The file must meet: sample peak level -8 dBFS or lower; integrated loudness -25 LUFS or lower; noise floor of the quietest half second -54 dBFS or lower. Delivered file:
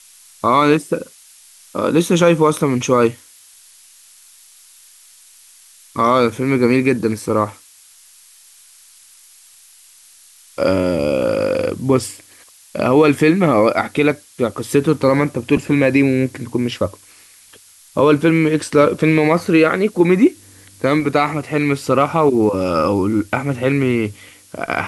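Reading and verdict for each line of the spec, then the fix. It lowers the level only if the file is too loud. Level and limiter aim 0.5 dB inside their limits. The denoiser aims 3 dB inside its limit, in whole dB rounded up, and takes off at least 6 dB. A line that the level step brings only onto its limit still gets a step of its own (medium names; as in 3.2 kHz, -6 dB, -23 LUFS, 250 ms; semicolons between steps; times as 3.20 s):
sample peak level -2.5 dBFS: fail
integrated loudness -16.5 LUFS: fail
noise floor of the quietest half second -47 dBFS: fail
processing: trim -9 dB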